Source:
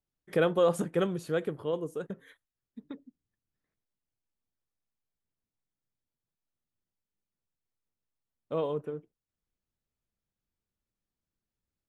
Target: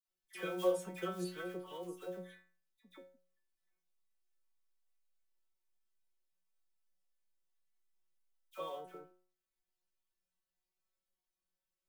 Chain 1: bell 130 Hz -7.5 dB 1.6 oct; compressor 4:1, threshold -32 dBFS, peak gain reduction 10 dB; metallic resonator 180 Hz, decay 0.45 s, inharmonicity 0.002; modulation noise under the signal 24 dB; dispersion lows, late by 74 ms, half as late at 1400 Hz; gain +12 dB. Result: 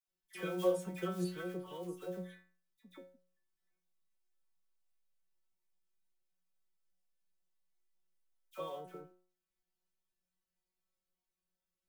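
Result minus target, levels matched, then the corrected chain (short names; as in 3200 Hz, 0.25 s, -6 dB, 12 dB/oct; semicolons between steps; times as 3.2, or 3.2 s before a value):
125 Hz band +5.0 dB
bell 130 Hz -18 dB 1.6 oct; compressor 4:1, threshold -32 dBFS, peak gain reduction 9 dB; metallic resonator 180 Hz, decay 0.45 s, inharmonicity 0.002; modulation noise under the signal 24 dB; dispersion lows, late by 74 ms, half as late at 1400 Hz; gain +12 dB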